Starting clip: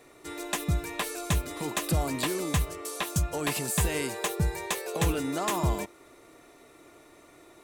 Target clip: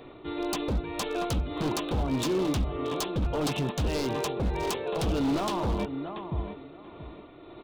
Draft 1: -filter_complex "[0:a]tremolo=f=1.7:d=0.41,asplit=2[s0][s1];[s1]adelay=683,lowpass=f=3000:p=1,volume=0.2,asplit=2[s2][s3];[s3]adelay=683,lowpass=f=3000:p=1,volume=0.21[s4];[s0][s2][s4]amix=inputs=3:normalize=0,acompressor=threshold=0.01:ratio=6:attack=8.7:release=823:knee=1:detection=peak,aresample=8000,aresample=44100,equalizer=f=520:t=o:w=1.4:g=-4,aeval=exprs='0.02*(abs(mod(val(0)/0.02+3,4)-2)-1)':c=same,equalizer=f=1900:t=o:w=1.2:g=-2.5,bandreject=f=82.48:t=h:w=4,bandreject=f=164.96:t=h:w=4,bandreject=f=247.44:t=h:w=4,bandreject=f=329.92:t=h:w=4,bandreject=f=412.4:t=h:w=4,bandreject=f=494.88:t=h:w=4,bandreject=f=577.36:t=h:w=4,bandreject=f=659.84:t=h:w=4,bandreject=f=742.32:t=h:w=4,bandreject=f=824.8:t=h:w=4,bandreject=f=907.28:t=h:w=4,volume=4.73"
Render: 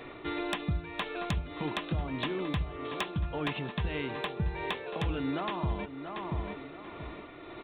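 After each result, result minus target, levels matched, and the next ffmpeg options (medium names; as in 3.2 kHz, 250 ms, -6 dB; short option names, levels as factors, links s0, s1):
compression: peak gain reduction +9 dB; 2 kHz band +7.0 dB
-filter_complex "[0:a]tremolo=f=1.7:d=0.41,asplit=2[s0][s1];[s1]adelay=683,lowpass=f=3000:p=1,volume=0.2,asplit=2[s2][s3];[s3]adelay=683,lowpass=f=3000:p=1,volume=0.21[s4];[s0][s2][s4]amix=inputs=3:normalize=0,acompressor=threshold=0.0355:ratio=6:attack=8.7:release=823:knee=1:detection=peak,aresample=8000,aresample=44100,equalizer=f=520:t=o:w=1.4:g=-4,aeval=exprs='0.02*(abs(mod(val(0)/0.02+3,4)-2)-1)':c=same,equalizer=f=1900:t=o:w=1.2:g=-2.5,bandreject=f=82.48:t=h:w=4,bandreject=f=164.96:t=h:w=4,bandreject=f=247.44:t=h:w=4,bandreject=f=329.92:t=h:w=4,bandreject=f=412.4:t=h:w=4,bandreject=f=494.88:t=h:w=4,bandreject=f=577.36:t=h:w=4,bandreject=f=659.84:t=h:w=4,bandreject=f=742.32:t=h:w=4,bandreject=f=824.8:t=h:w=4,bandreject=f=907.28:t=h:w=4,volume=4.73"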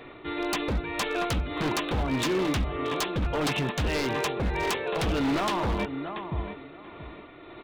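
2 kHz band +6.5 dB
-filter_complex "[0:a]tremolo=f=1.7:d=0.41,asplit=2[s0][s1];[s1]adelay=683,lowpass=f=3000:p=1,volume=0.2,asplit=2[s2][s3];[s3]adelay=683,lowpass=f=3000:p=1,volume=0.21[s4];[s0][s2][s4]amix=inputs=3:normalize=0,acompressor=threshold=0.0355:ratio=6:attack=8.7:release=823:knee=1:detection=peak,aresample=8000,aresample=44100,equalizer=f=520:t=o:w=1.4:g=-4,aeval=exprs='0.02*(abs(mod(val(0)/0.02+3,4)-2)-1)':c=same,equalizer=f=1900:t=o:w=1.2:g=-13,bandreject=f=82.48:t=h:w=4,bandreject=f=164.96:t=h:w=4,bandreject=f=247.44:t=h:w=4,bandreject=f=329.92:t=h:w=4,bandreject=f=412.4:t=h:w=4,bandreject=f=494.88:t=h:w=4,bandreject=f=577.36:t=h:w=4,bandreject=f=659.84:t=h:w=4,bandreject=f=742.32:t=h:w=4,bandreject=f=824.8:t=h:w=4,bandreject=f=907.28:t=h:w=4,volume=4.73"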